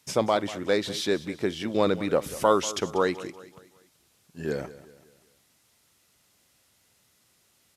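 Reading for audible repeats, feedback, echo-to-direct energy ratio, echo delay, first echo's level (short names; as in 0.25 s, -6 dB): 3, 44%, -15.5 dB, 0.19 s, -16.5 dB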